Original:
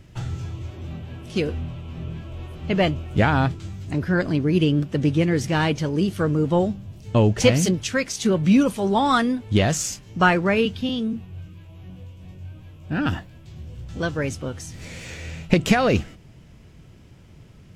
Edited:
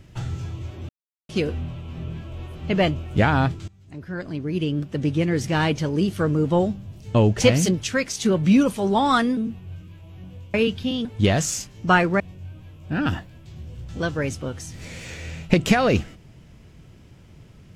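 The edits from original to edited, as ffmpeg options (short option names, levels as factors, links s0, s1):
-filter_complex "[0:a]asplit=8[s0][s1][s2][s3][s4][s5][s6][s7];[s0]atrim=end=0.89,asetpts=PTS-STARTPTS,afade=t=out:st=0.886:d=0.004:c=hsin[s8];[s1]atrim=start=0.89:end=1.29,asetpts=PTS-STARTPTS,volume=0[s9];[s2]atrim=start=1.29:end=3.68,asetpts=PTS-STARTPTS,afade=t=in:d=0.004:c=hsin,afade=t=out:st=2.386:d=0.004:c=hsin:silence=0.0891251[s10];[s3]atrim=start=3.68:end=9.372,asetpts=PTS-STARTPTS,afade=t=in:d=1.96:silence=0.0891251[s11];[s4]atrim=start=11.028:end=12.202[s12];[s5]atrim=start=10.518:end=11.032[s13];[s6]atrim=start=9.368:end=10.522[s14];[s7]atrim=start=12.198[s15];[s8][s9][s10][s11]concat=n=4:v=0:a=1[s16];[s16][s12]acrossfade=d=0.004:c1=hsin:c2=hsin[s17];[s17][s13]acrossfade=d=0.004:c1=hsin:c2=hsin[s18];[s18][s14]acrossfade=d=0.004:c1=hsin:c2=hsin[s19];[s19][s15]acrossfade=d=0.004:c1=hsin:c2=hsin"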